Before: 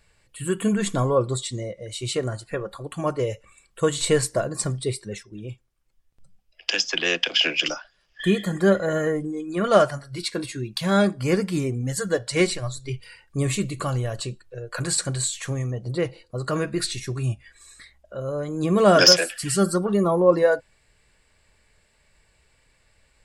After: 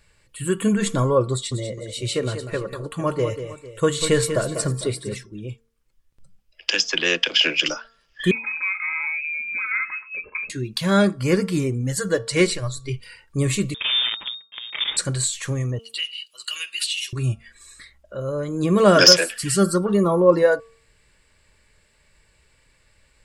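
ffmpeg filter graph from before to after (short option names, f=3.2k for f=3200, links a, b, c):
-filter_complex "[0:a]asettb=1/sr,asplit=3[a][b][c];[a]atrim=end=1.324[d];[b]atrim=start=1.32:end=5.26,asetpts=PTS-STARTPTS,afade=t=in:d=0.004:c=qsin,afade=t=out:st=3.936:d=0.004:c=qsin,equalizer=f=7.1k:w=1.2:g=-2.5,aecho=1:1:194|454:0.335|0.133,atrim=end_sample=173754[e];[c]atrim=start=5.256[f];[d][e]acrossfade=d=0.004:c1=hsin:c2=qsin[g];[g][f]acrossfade=d=0.004:c1=qsin:c2=hsin,asettb=1/sr,asplit=3[h][i][j];[h]atrim=end=8.314[k];[i]atrim=start=8.31:end=10.5,asetpts=PTS-STARTPTS,afade=t=in:d=0.004:c=qsin,afade=t=out:st=2.186:d=0.004:c=qsin,acompressor=threshold=-26dB:ratio=3:attack=3.2:release=140:knee=1:detection=peak,lowpass=f=2.3k:t=q:w=0.5098,lowpass=f=2.3k:t=q:w=0.6013,lowpass=f=2.3k:t=q:w=0.9,lowpass=f=2.3k:t=q:w=2.563,afreqshift=-2700,equalizer=f=690:w=2.2:g=-12.5[l];[j]atrim=start=10.496[m];[k][l]acrossfade=d=0.004:c1=hsin:c2=qsin[n];[n][m]acrossfade=d=0.004:c1=qsin:c2=hsin,asettb=1/sr,asplit=3[o][p][q];[o]atrim=end=13.744[r];[p]atrim=start=13.74:end=14.97,asetpts=PTS-STARTPTS,afade=t=in:d=0.004:c=qsin,afade=t=out:st=1.226:d=0.004:c=qsin,acrusher=bits=5:dc=4:mix=0:aa=0.000001,lowpass=f=3.1k:t=q:w=0.5098,lowpass=f=3.1k:t=q:w=0.6013,lowpass=f=3.1k:t=q:w=0.9,lowpass=f=3.1k:t=q:w=2.563,afreqshift=-3700[s];[q]atrim=start=14.966[t];[r][s]acrossfade=d=0.004:c1=hsin:c2=qsin[u];[u][t]acrossfade=d=0.004:c1=qsin:c2=hsin,asettb=1/sr,asplit=3[v][w][x];[v]atrim=end=15.794[y];[w]atrim=start=15.79:end=17.13,asetpts=PTS-STARTPTS,afade=t=in:d=0.004:c=qsin,afade=t=out:st=1.336:d=0.004:c=qsin,highpass=f=2.9k:t=q:w=15,acompressor=threshold=-28dB:ratio=3:attack=3.2:release=140:knee=1:detection=peak,highshelf=f=8.7k:g=11.5[z];[x]atrim=start=17.126[aa];[y][z]acrossfade=d=0.004:c1=hsin:c2=qsin[ab];[ab][aa]acrossfade=d=0.004:c1=qsin:c2=hsin,equalizer=f=730:t=o:w=0.2:g=-10,bandreject=f=227.5:t=h:w=4,bandreject=f=455:t=h:w=4,bandreject=f=682.5:t=h:w=4,bandreject=f=910:t=h:w=4,bandreject=f=1.1375k:t=h:w=4,bandreject=f=1.365k:t=h:w=4,volume=2.5dB"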